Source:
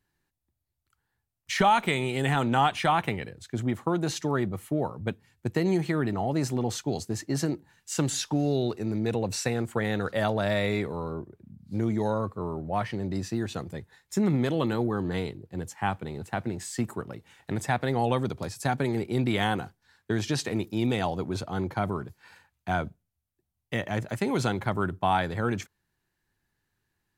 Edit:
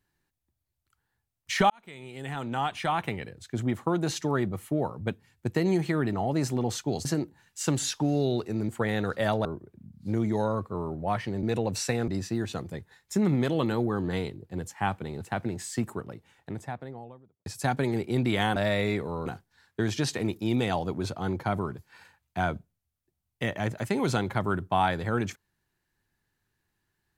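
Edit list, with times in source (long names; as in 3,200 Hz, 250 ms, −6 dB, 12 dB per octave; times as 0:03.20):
0:01.70–0:03.60: fade in
0:07.05–0:07.36: remove
0:09.00–0:09.65: move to 0:13.09
0:10.41–0:11.11: move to 0:19.57
0:16.66–0:18.47: fade out and dull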